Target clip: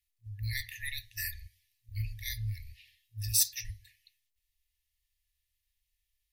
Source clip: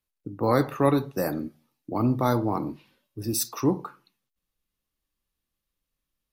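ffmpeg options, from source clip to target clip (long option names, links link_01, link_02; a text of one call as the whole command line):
ffmpeg -i in.wav -af "tremolo=f=290:d=0.4,afftfilt=real='re*(1-between(b*sr/4096,110,1700))':imag='im*(1-between(b*sr/4096,110,1700))':win_size=4096:overlap=0.75,volume=4dB" out.wav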